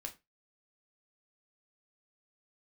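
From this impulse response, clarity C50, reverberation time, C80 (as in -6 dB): 16.0 dB, 0.20 s, 23.0 dB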